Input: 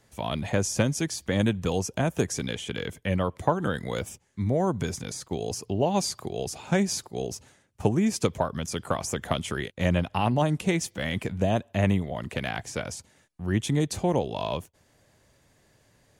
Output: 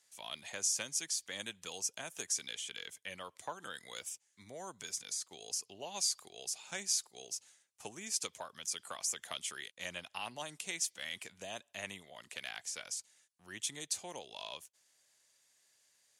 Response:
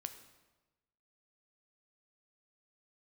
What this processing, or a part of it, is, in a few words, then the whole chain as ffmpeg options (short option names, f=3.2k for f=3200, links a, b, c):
piezo pickup straight into a mixer: -af "lowpass=9k,aderivative,volume=1dB"